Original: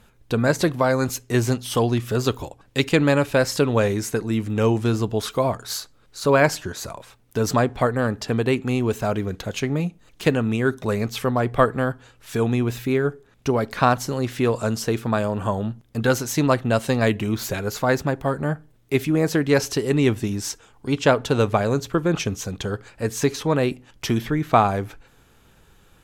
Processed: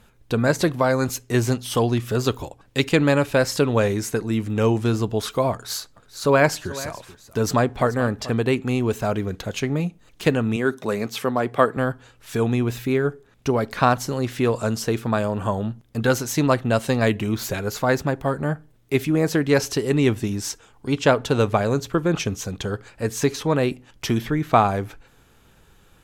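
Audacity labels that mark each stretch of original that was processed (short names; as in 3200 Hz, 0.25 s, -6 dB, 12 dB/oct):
5.530000	8.350000	echo 0.433 s -16.5 dB
10.560000	11.770000	HPF 180 Hz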